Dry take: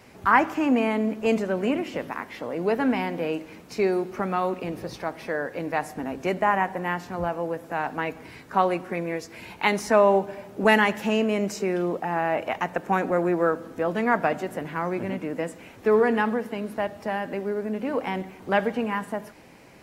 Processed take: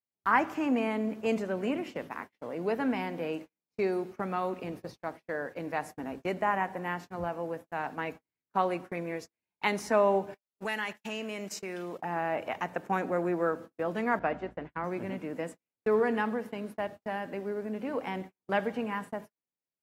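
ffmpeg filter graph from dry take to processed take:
ffmpeg -i in.wav -filter_complex "[0:a]asettb=1/sr,asplit=3[link_01][link_02][link_03];[link_01]atrim=end=10.344[link_04];[link_02]atrim=start=10.34:end=11.99,asetpts=PTS-STARTPTS,afade=type=in:duration=0.004:curve=qsin,afade=type=out:start_time=1.646:duration=0.004:curve=qsin,tiltshelf=frequency=1100:gain=-5.5,acompressor=threshold=-28dB:ratio=2:attack=3.2:release=140:knee=1:detection=peak,agate=range=-11dB:threshold=-35dB:ratio=16:release=100:detection=peak[link_05];[link_03]atrim=start=11.986[link_06];[link_04][link_05]acrossfade=duration=0.004:curve1=hsin:curve2=qsin[link_07];[link_07][link_06]acrossfade=duration=0.004:curve1=qsin:curve2=hsin,asettb=1/sr,asplit=3[link_08][link_09][link_10];[link_08]atrim=end=14.194[link_11];[link_09]atrim=start=14.19:end=14.84,asetpts=PTS-STARTPTS,afade=type=in:duration=0.004:curve=qsin,afade=type=out:start_time=0.646:duration=0.004:curve=qsin,highpass=130,lowpass=3200,agate=range=-33dB:threshold=-33dB:ratio=3:release=100:detection=peak,aeval=exprs='val(0)+0.00501*(sin(2*PI*60*n/s)+sin(2*PI*2*60*n/s)/2+sin(2*PI*3*60*n/s)/3+sin(2*PI*4*60*n/s)/4+sin(2*PI*5*60*n/s)/5)':channel_layout=same[link_12];[link_10]atrim=start=14.836[link_13];[link_11][link_12]acrossfade=duration=0.004:curve1=hsin:curve2=qsin[link_14];[link_14][link_13]acrossfade=duration=0.004:curve1=qsin:curve2=hsin,highpass=60,agate=range=-46dB:threshold=-34dB:ratio=16:detection=peak,volume=-6.5dB" out.wav

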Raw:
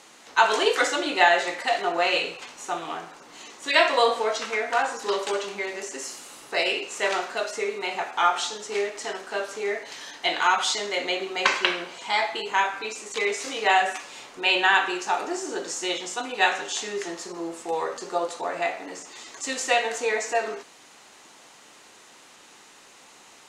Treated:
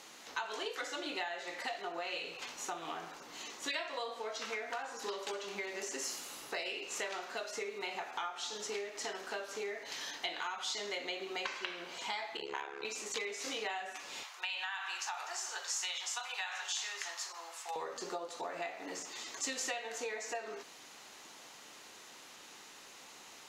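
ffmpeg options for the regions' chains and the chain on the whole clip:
ffmpeg -i in.wav -filter_complex "[0:a]asettb=1/sr,asplit=3[link_01][link_02][link_03];[link_01]atrim=end=12.374[link_04];[link_02]atrim=start=12.37:end=12.85,asetpts=PTS-STARTPTS,afade=type=in:duration=0.004:curve=qsin,afade=type=out:start_time=0.476:duration=0.004:curve=qsin,aeval=exprs='val(0)+0.0282*sin(2*PI*420*n/s)':channel_layout=same,tremolo=f=71:d=1,adynamicsmooth=sensitivity=2.5:basefreq=7100[link_05];[link_03]atrim=start=12.846[link_06];[link_04][link_05]acrossfade=duration=0.004:curve1=hsin:curve2=qsin[link_07];[link_07][link_06]acrossfade=duration=0.004:curve1=qsin:curve2=hsin,asettb=1/sr,asplit=3[link_08][link_09][link_10];[link_08]atrim=end=14.234[link_11];[link_09]atrim=start=14.23:end=17.76,asetpts=PTS-STARTPTS,afade=type=in:duration=0.004:curve=qsin,afade=type=out:start_time=3.526:duration=0.004:curve=qsin,highpass=frequency=810:width=0.5412,highpass=frequency=810:width=1.3066,acompressor=threshold=-27dB:ratio=2.5:attack=3.2:release=140:knee=1:detection=peak[link_12];[link_10]atrim=start=17.756[link_13];[link_11][link_12]acrossfade=duration=0.004:curve1=hsin:curve2=qsin[link_14];[link_14][link_13]acrossfade=duration=0.004:curve1=qsin:curve2=hsin,equalizer=frequency=8800:width=1.7:gain=-10.5,acompressor=threshold=-33dB:ratio=10,aemphasis=mode=production:type=cd,volume=-4dB" out.wav

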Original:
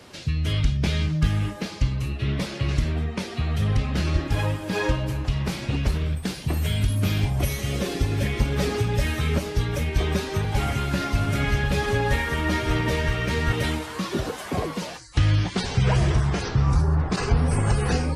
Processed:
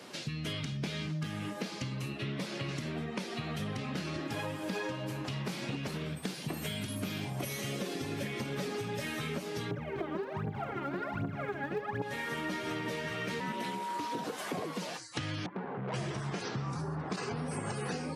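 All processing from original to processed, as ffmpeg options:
ffmpeg -i in.wav -filter_complex "[0:a]asettb=1/sr,asplit=3[link_01][link_02][link_03];[link_01]atrim=end=9.714[link_04];[link_02]atrim=start=9.71:end=12.02,asetpts=PTS-STARTPTS,afade=type=in:duration=0.004:curve=qsin,afade=type=out:start_time=2.306:duration=0.004:curve=qsin,lowpass=1300,asoftclip=type=hard:threshold=-17dB,aphaser=in_gain=1:out_gain=1:delay=3.7:decay=0.79:speed=1.3:type=triangular[link_05];[link_03]atrim=start=12.016[link_06];[link_04][link_05]acrossfade=duration=0.004:curve1=hsin:curve2=qsin[link_07];[link_07][link_06]acrossfade=duration=0.004:curve1=qsin:curve2=hsin,asettb=1/sr,asplit=3[link_08][link_09][link_10];[link_08]atrim=end=13.404[link_11];[link_09]atrim=start=13.4:end=14.24,asetpts=PTS-STARTPTS,afade=type=in:duration=0.004:curve=qsin,afade=type=out:start_time=0.836:duration=0.004:curve=qsin,bandreject=frequency=950:width=9.3,aeval=exprs='val(0)*sin(2*PI*110*n/s)':channel_layout=same,aeval=exprs='val(0)+0.0398*sin(2*PI*950*n/s)':channel_layout=same[link_12];[link_10]atrim=start=14.236[link_13];[link_11][link_12]acrossfade=duration=0.004:curve1=hsin:curve2=qsin[link_14];[link_14][link_13]acrossfade=duration=0.004:curve1=qsin:curve2=hsin,asettb=1/sr,asplit=3[link_15][link_16][link_17];[link_15]atrim=end=15.464[link_18];[link_16]atrim=start=15.46:end=15.94,asetpts=PTS-STARTPTS,afade=type=in:duration=0.004:curve=qsin,afade=type=out:start_time=0.476:duration=0.004:curve=qsin,lowpass=frequency=1400:width=0.5412,lowpass=frequency=1400:width=1.3066,equalizer=frequency=86:width=1.4:gain=-14,aeval=exprs='(tanh(25.1*val(0)+0.45)-tanh(0.45))/25.1':channel_layout=same[link_19];[link_17]atrim=start=15.936[link_20];[link_18][link_19]acrossfade=duration=0.004:curve1=hsin:curve2=qsin[link_21];[link_21][link_20]acrossfade=duration=0.004:curve1=qsin:curve2=hsin,highpass=frequency=150:width=0.5412,highpass=frequency=150:width=1.3066,acompressor=threshold=-32dB:ratio=6,volume=-1.5dB" out.wav

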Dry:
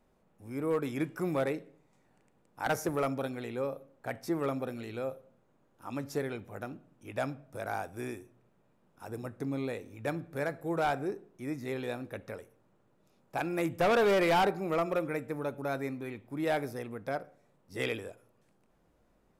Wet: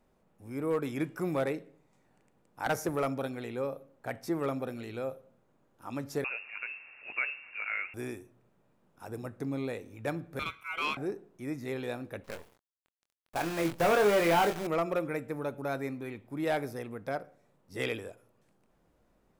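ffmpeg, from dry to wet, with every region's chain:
ffmpeg -i in.wav -filter_complex "[0:a]asettb=1/sr,asplit=3[link_01][link_02][link_03];[link_01]atrim=end=6.244[link_04];[link_02]atrim=start=6.24:end=7.94,asetpts=PTS-STARTPTS,afade=type=in:duration=0.004:curve=qsin,afade=type=out:start_time=1.696:duration=0.004:curve=qsin,aeval=exprs='val(0)+0.5*0.00473*sgn(val(0))':channel_layout=same,highpass=160,lowpass=frequency=2500:width_type=q:width=0.5098,lowpass=frequency=2500:width_type=q:width=0.6013,lowpass=frequency=2500:width_type=q:width=0.9,lowpass=frequency=2500:width_type=q:width=2.563,afreqshift=-2900[link_05];[link_03]atrim=start=7.936[link_06];[link_04][link_05]acrossfade=duration=0.004:curve1=hsin:curve2=qsin[link_07];[link_07][link_06]acrossfade=duration=0.004:curve1=qsin:curve2=hsin,asettb=1/sr,asplit=3[link_08][link_09][link_10];[link_08]atrim=end=10.394[link_11];[link_09]atrim=start=10.39:end=10.97,asetpts=PTS-STARTPTS,afade=type=in:duration=0.004:curve=qsin,afade=type=out:start_time=0.576:duration=0.004:curve=qsin,highpass=350,aeval=exprs='val(0)*sin(2*PI*1800*n/s)':channel_layout=same[link_12];[link_10]atrim=start=10.966[link_13];[link_11][link_12]acrossfade=duration=0.004:curve1=hsin:curve2=qsin[link_14];[link_14][link_13]acrossfade=duration=0.004:curve1=qsin:curve2=hsin,asettb=1/sr,asplit=3[link_15][link_16][link_17];[link_15]atrim=end=12.244[link_18];[link_16]atrim=start=12.24:end=14.67,asetpts=PTS-STARTPTS,afade=type=in:duration=0.004:curve=qsin,afade=type=out:start_time=2.426:duration=0.004:curve=qsin,bass=frequency=250:gain=-2,treble=frequency=4000:gain=-6,acrusher=bits=7:dc=4:mix=0:aa=0.000001,asplit=2[link_19][link_20];[link_20]adelay=24,volume=-6.5dB[link_21];[link_19][link_21]amix=inputs=2:normalize=0,atrim=end_sample=107163[link_22];[link_17]atrim=start=14.666[link_23];[link_18][link_22]acrossfade=duration=0.004:curve1=hsin:curve2=qsin[link_24];[link_24][link_23]acrossfade=duration=0.004:curve1=qsin:curve2=hsin" out.wav

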